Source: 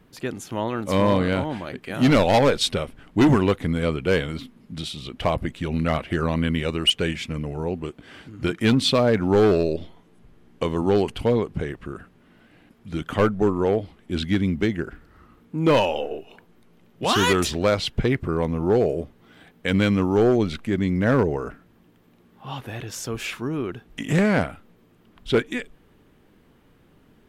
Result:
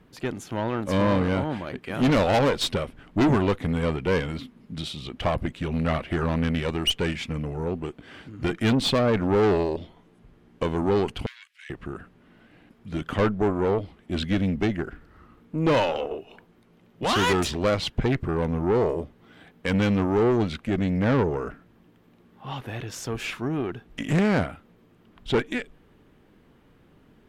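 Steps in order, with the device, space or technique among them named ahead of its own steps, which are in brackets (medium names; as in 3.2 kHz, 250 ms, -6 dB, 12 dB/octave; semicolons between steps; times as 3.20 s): tube preamp driven hard (valve stage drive 18 dB, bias 0.5; treble shelf 5.8 kHz -6.5 dB); 11.26–11.70 s: steep high-pass 1.8 kHz 36 dB/octave; trim +2 dB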